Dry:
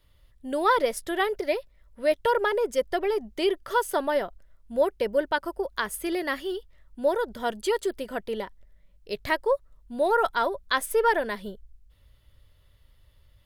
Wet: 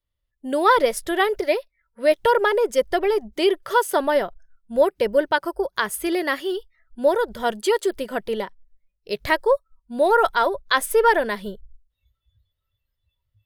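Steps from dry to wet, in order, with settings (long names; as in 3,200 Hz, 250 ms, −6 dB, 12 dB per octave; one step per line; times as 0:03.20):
noise reduction from a noise print of the clip's start 26 dB
level +5.5 dB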